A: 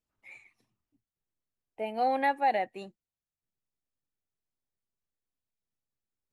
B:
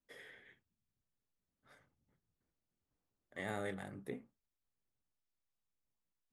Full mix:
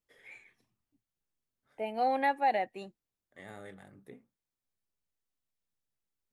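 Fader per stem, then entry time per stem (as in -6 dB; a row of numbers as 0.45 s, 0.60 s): -1.5 dB, -7.0 dB; 0.00 s, 0.00 s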